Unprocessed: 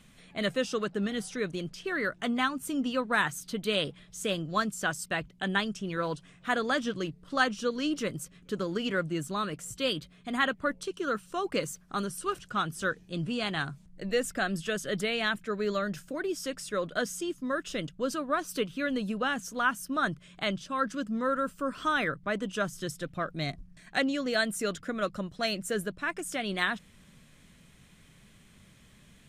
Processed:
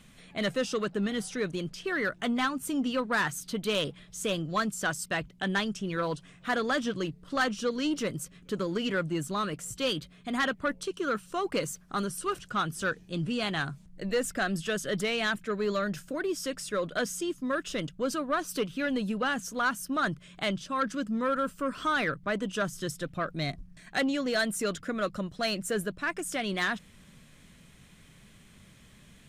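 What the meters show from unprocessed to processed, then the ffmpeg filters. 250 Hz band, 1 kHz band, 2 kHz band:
+1.0 dB, 0.0 dB, 0.0 dB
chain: -af "asoftclip=type=tanh:threshold=0.0794,volume=1.26"

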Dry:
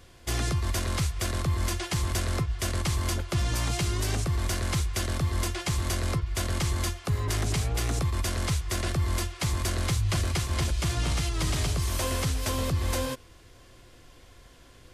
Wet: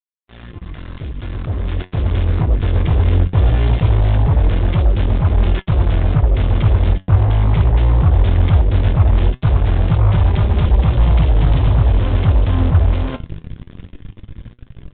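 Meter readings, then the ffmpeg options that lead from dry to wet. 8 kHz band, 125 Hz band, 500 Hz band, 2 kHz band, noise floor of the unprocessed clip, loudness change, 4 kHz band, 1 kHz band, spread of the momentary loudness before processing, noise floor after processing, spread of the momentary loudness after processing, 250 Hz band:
under -40 dB, +14.5 dB, +9.5 dB, +3.0 dB, -53 dBFS, +13.0 dB, -1.5 dB, +8.0 dB, 2 LU, -45 dBFS, 11 LU, +11.0 dB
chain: -filter_complex "[0:a]asplit=2[s0][s1];[s1]adelay=19,volume=0.355[s2];[s0][s2]amix=inputs=2:normalize=0,areverse,acompressor=threshold=0.0112:ratio=5,areverse,asubboost=boost=9:cutoff=190,aresample=11025,acrusher=bits=4:mix=0:aa=0.5,aresample=44100,dynaudnorm=f=110:g=31:m=3.98,flanger=delay=4.9:depth=7.5:regen=71:speed=0.19:shape=sinusoidal,volume=1.88" -ar 8000 -c:a adpcm_g726 -b:a 40k

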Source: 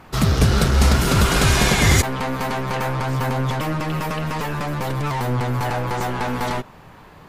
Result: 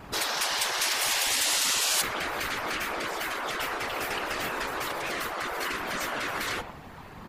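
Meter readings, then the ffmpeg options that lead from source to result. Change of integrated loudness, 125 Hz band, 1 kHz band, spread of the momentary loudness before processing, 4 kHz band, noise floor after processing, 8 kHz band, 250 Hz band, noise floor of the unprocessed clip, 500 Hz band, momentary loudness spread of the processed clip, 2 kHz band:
-7.5 dB, -29.5 dB, -8.0 dB, 9 LU, -2.0 dB, -45 dBFS, -1.5 dB, -18.0 dB, -45 dBFS, -10.5 dB, 8 LU, -4.0 dB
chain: -filter_complex "[0:a]asplit=2[s0][s1];[s1]adelay=120,highpass=300,lowpass=3400,asoftclip=type=hard:threshold=0.178,volume=0.141[s2];[s0][s2]amix=inputs=2:normalize=0,afftfilt=real='hypot(re,im)*cos(2*PI*random(0))':imag='hypot(re,im)*sin(2*PI*random(1))':win_size=512:overlap=0.75,afftfilt=real='re*lt(hypot(re,im),0.0708)':imag='im*lt(hypot(re,im),0.0708)':win_size=1024:overlap=0.75,volume=2"

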